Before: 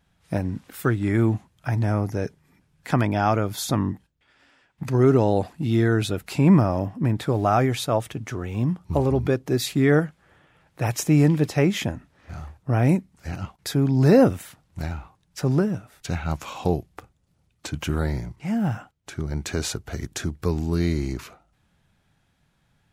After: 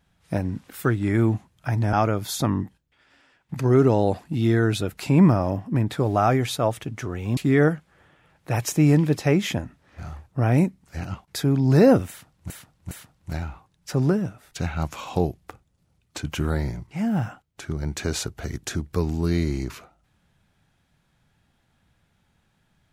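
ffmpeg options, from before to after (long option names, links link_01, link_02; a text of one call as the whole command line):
ffmpeg -i in.wav -filter_complex "[0:a]asplit=5[link_01][link_02][link_03][link_04][link_05];[link_01]atrim=end=1.932[link_06];[link_02]atrim=start=3.218:end=8.662[link_07];[link_03]atrim=start=9.678:end=14.812[link_08];[link_04]atrim=start=14.398:end=14.812[link_09];[link_05]atrim=start=14.398[link_10];[link_06][link_07]acrossfade=duration=0.004:curve1=hsin:curve2=hsin[link_11];[link_11][link_08]acrossfade=duration=0.004:curve1=hsin:curve2=hsin[link_12];[link_12][link_09]acrossfade=duration=0.004:curve1=hsin:curve2=hsin[link_13];[link_13][link_10]acrossfade=duration=0.004:curve1=hsin:curve2=hsin" out.wav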